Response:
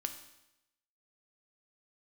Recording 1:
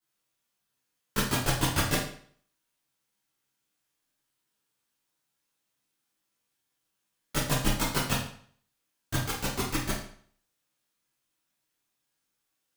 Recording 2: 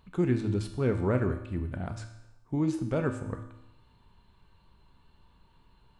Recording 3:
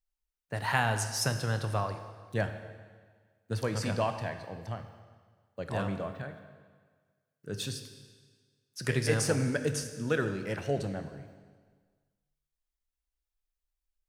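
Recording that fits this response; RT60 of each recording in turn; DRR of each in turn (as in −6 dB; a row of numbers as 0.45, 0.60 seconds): 2; 0.55, 0.90, 1.6 seconds; −11.0, 6.5, 7.5 decibels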